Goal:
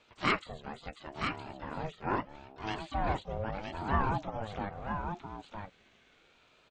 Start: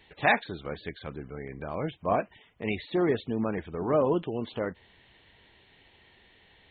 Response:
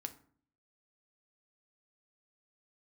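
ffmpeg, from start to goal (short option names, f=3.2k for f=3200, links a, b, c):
-filter_complex "[0:a]asplit=2[a][b];[b]asetrate=88200,aresample=44100,atempo=0.5,volume=-12dB[c];[a][c]amix=inputs=2:normalize=0,aecho=1:1:965:0.531,aeval=exprs='val(0)*sin(2*PI*420*n/s+420*0.3/0.76*sin(2*PI*0.76*n/s))':c=same,volume=-3.5dB"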